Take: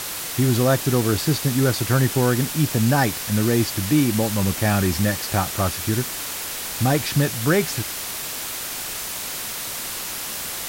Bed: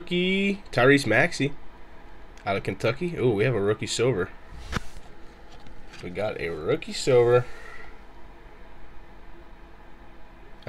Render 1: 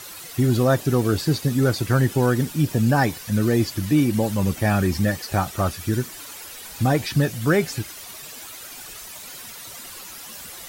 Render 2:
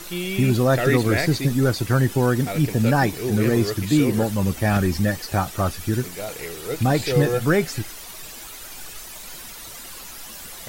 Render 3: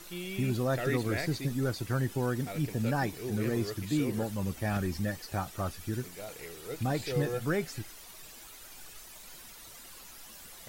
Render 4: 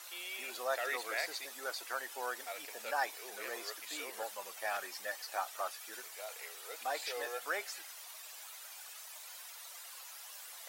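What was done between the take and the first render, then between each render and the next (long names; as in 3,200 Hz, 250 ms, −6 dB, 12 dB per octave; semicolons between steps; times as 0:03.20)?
broadband denoise 12 dB, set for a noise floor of −30 dBFS
mix in bed −4 dB
level −11.5 dB
high-pass filter 620 Hz 24 dB per octave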